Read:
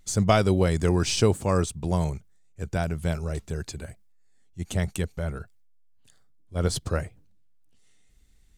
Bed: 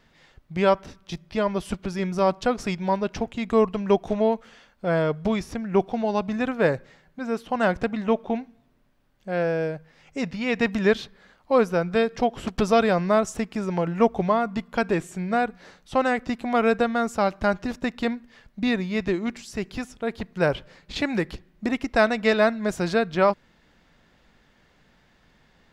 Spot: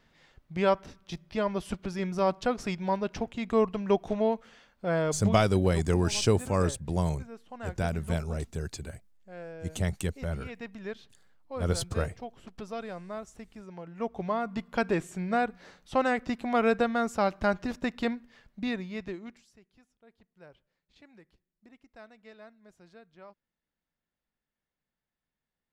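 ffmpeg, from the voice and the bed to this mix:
-filter_complex "[0:a]adelay=5050,volume=0.708[s0];[1:a]volume=2.99,afade=t=out:st=5.17:d=0.25:silence=0.211349,afade=t=in:st=13.9:d=0.85:silence=0.188365,afade=t=out:st=18.05:d=1.55:silence=0.0446684[s1];[s0][s1]amix=inputs=2:normalize=0"

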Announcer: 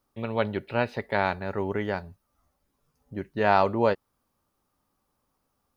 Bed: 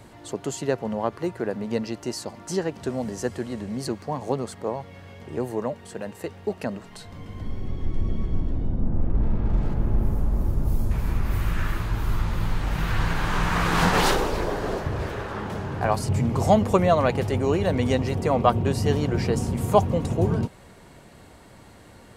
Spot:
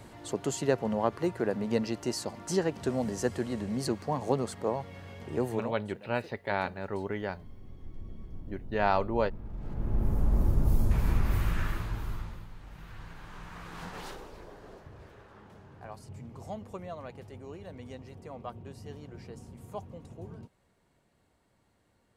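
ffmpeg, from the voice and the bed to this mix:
-filter_complex "[0:a]adelay=5350,volume=0.531[s0];[1:a]volume=5.31,afade=t=out:st=5.49:d=0.28:silence=0.158489,afade=t=in:st=9.57:d=0.79:silence=0.149624,afade=t=out:st=11.11:d=1.35:silence=0.0944061[s1];[s0][s1]amix=inputs=2:normalize=0"

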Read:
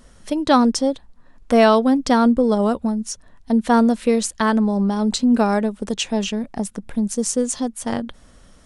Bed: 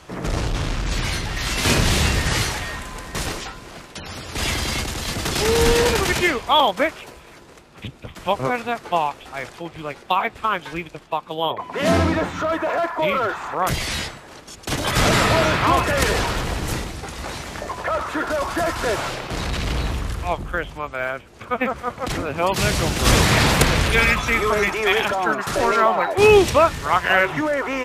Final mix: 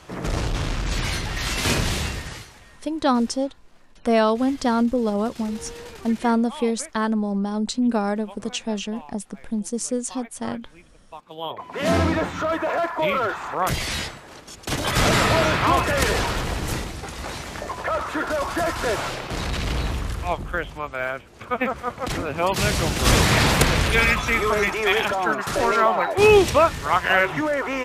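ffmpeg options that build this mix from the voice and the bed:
-filter_complex "[0:a]adelay=2550,volume=0.562[s0];[1:a]volume=8.41,afade=t=out:st=1.48:d=0.98:silence=0.1,afade=t=in:st=11.05:d=1:silence=0.1[s1];[s0][s1]amix=inputs=2:normalize=0"

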